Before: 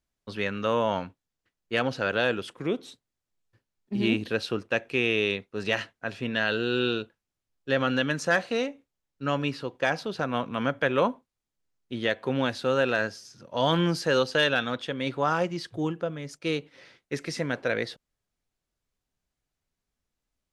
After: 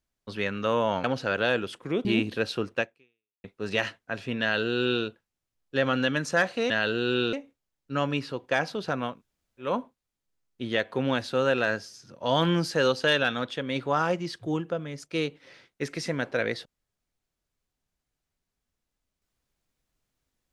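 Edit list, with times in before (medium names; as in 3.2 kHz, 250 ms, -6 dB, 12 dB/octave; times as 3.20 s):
1.04–1.79 s: delete
2.80–3.99 s: delete
4.74–5.38 s: fade out exponential
6.35–6.98 s: copy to 8.64 s
10.41–11.00 s: room tone, crossfade 0.24 s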